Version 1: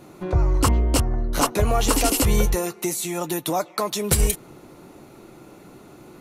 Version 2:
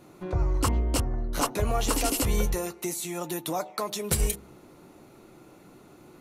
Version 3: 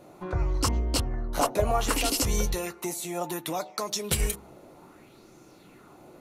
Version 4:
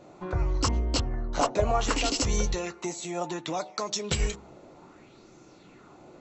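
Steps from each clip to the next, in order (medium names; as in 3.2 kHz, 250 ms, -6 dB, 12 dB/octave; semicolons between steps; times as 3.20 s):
de-hum 67.71 Hz, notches 14; trim -6 dB
sweeping bell 0.65 Hz 590–6200 Hz +10 dB; trim -1.5 dB
brick-wall FIR low-pass 7.9 kHz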